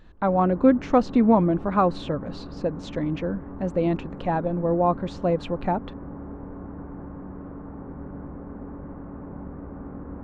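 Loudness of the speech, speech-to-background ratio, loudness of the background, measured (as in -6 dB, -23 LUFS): -24.0 LUFS, 15.0 dB, -39.0 LUFS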